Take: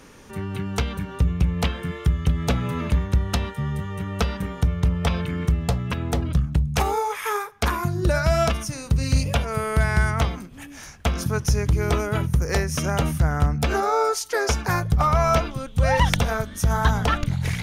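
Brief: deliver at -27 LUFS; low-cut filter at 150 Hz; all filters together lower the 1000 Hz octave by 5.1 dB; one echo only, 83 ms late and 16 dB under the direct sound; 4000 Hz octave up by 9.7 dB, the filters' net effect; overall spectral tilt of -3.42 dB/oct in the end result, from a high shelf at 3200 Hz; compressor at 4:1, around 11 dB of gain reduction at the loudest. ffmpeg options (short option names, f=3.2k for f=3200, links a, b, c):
-af "highpass=150,equalizer=f=1k:t=o:g=-8.5,highshelf=f=3.2k:g=6,equalizer=f=4k:t=o:g=8.5,acompressor=threshold=-27dB:ratio=4,aecho=1:1:83:0.158,volume=3dB"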